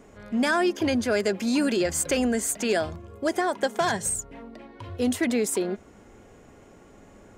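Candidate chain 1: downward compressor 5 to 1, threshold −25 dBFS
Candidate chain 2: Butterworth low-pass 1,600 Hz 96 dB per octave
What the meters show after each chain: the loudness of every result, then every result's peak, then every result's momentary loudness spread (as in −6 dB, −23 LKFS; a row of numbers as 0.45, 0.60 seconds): −29.5, −26.5 LKFS; −15.0, −13.5 dBFS; 10, 18 LU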